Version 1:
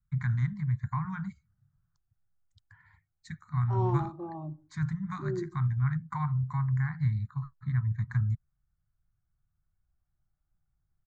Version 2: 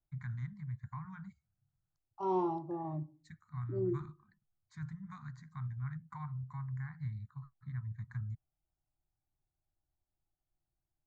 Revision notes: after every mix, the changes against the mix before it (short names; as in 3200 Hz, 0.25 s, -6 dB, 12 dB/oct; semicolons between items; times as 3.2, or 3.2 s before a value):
first voice -12.0 dB; second voice: entry -1.50 s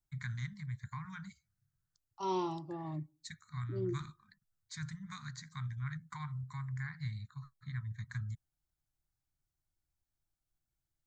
second voice: send -10.5 dB; master: remove EQ curve 260 Hz 0 dB, 730 Hz +4 dB, 3800 Hz -19 dB